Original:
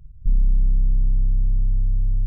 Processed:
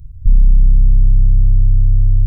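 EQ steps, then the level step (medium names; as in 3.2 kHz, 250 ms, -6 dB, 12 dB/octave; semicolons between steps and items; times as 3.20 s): tone controls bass +7 dB, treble +13 dB; peaking EQ 86 Hz +8.5 dB 0.6 oct; +1.0 dB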